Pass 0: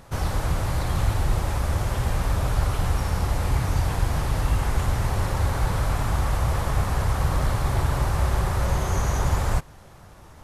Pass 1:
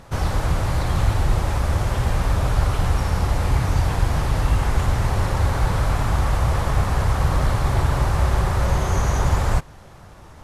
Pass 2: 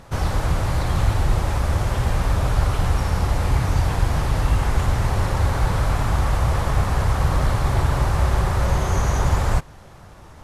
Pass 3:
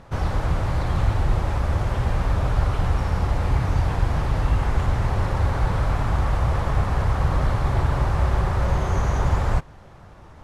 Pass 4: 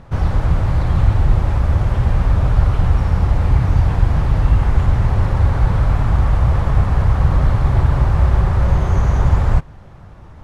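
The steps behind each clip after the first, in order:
high-shelf EQ 11,000 Hz −9 dB; level +3.5 dB
no processing that can be heard
low-pass filter 2,900 Hz 6 dB per octave; level −1.5 dB
bass and treble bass +6 dB, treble −3 dB; level +1.5 dB

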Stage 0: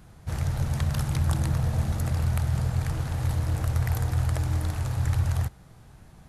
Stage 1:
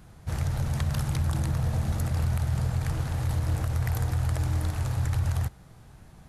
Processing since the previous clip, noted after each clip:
brickwall limiter −18.5 dBFS, peak gain reduction 6.5 dB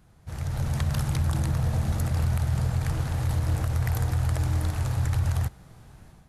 automatic gain control gain up to 9 dB
level −7.5 dB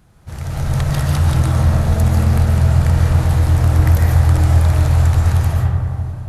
convolution reverb RT60 2.6 s, pre-delay 100 ms, DRR −3.5 dB
level +6 dB

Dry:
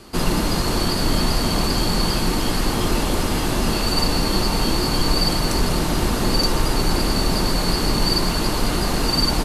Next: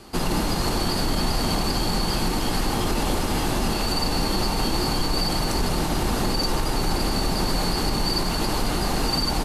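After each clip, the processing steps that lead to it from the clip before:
parametric band 800 Hz +5.5 dB 0.23 octaves
brickwall limiter −11.5 dBFS, peak gain reduction 6 dB
level −2 dB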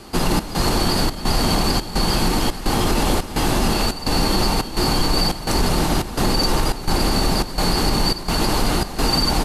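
gate pattern "xxxxx..xx" 192 BPM −12 dB
level +5 dB

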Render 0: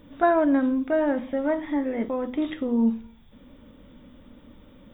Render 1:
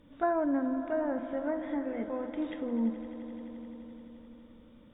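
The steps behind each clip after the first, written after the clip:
treble cut that deepens with the level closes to 1,700 Hz, closed at −19 dBFS
echo that builds up and dies away 86 ms, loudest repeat 5, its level −17.5 dB
level −8.5 dB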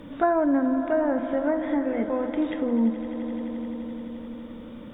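multiband upward and downward compressor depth 40%
level +8 dB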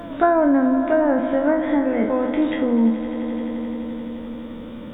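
peak hold with a decay on every bin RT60 0.40 s
echo ahead of the sound 265 ms −21.5 dB
level +5 dB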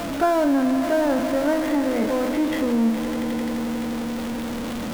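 converter with a step at zero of −20 dBFS
level −5 dB

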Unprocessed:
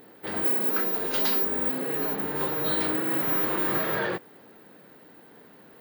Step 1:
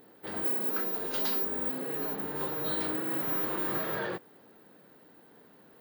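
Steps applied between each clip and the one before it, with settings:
parametric band 2,200 Hz −3 dB
level −5.5 dB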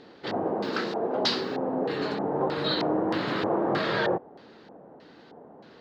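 auto-filter low-pass square 1.6 Hz 760–4,500 Hz
level +7.5 dB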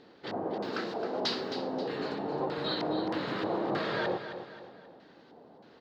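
repeating echo 266 ms, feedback 42%, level −10 dB
level −6 dB

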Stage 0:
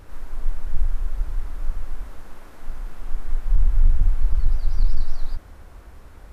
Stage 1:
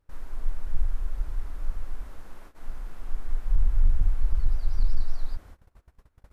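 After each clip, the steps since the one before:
noise gate −38 dBFS, range −24 dB
level −4.5 dB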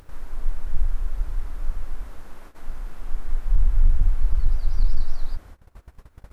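upward compression, threshold −36 dBFS
level +3.5 dB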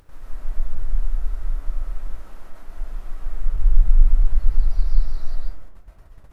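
comb and all-pass reverb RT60 0.63 s, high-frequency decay 0.45×, pre-delay 95 ms, DRR −2.5 dB
level −5 dB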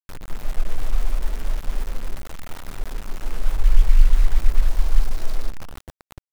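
bit reduction 6 bits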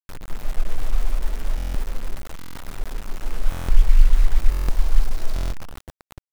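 buffer that repeats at 0:01.56/0:02.37/0:03.50/0:04.50/0:05.34, samples 1,024, times 7

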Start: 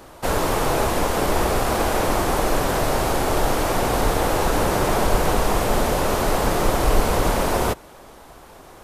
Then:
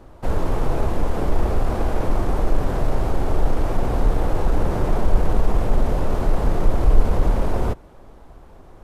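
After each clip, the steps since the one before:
spectral tilt −3 dB per octave
in parallel at −5 dB: soft clipping −5.5 dBFS, distortion −11 dB
on the sum: level −11 dB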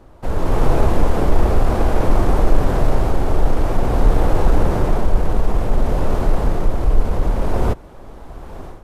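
automatic gain control gain up to 15.5 dB
level −1 dB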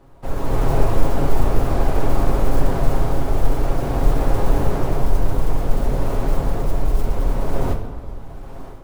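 noise that follows the level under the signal 31 dB
on a send at −2 dB: convolution reverb RT60 1.5 s, pre-delay 7 ms
on the sum: level −5 dB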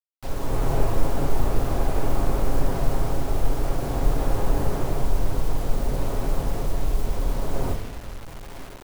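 bit reduction 6 bits
level −5 dB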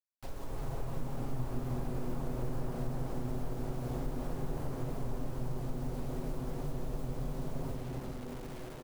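downward compressor 2 to 1, threshold −31 dBFS, peak gain reduction 11.5 dB
echo with shifted repeats 350 ms, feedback 60%, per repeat +120 Hz, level −7 dB
level −8.5 dB

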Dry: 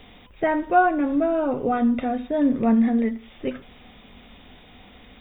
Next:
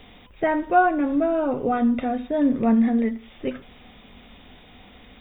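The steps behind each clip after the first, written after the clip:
no processing that can be heard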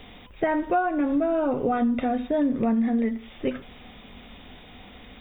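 downward compressor 6 to 1, threshold −22 dBFS, peak gain reduction 10 dB
level +2 dB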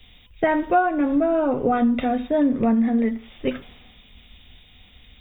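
multiband upward and downward expander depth 70%
level +3.5 dB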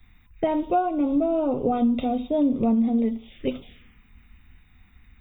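phaser swept by the level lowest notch 510 Hz, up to 1,700 Hz, full sweep at −24 dBFS
level −1.5 dB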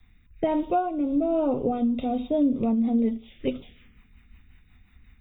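rotating-speaker cabinet horn 1.2 Hz, later 5.5 Hz, at 0:02.13

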